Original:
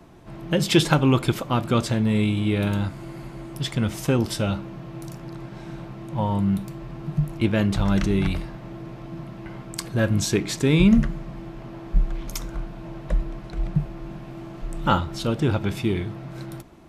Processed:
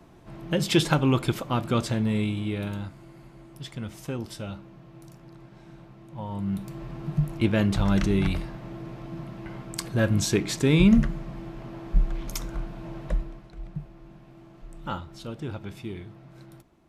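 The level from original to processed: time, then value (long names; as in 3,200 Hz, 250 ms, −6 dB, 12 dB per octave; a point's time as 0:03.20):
0:02.03 −3.5 dB
0:03.09 −11.5 dB
0:06.24 −11.5 dB
0:06.79 −1.5 dB
0:13.05 −1.5 dB
0:13.52 −12.5 dB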